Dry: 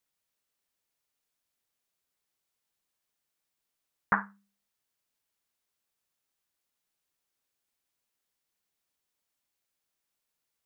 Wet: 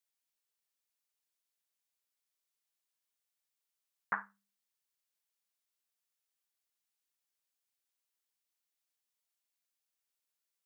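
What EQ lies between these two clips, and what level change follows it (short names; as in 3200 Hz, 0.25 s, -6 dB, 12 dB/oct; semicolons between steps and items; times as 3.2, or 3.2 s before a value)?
low shelf 230 Hz -11.5 dB; low shelf 480 Hz -8 dB; bell 1200 Hz -3.5 dB 2.9 oct; -3.5 dB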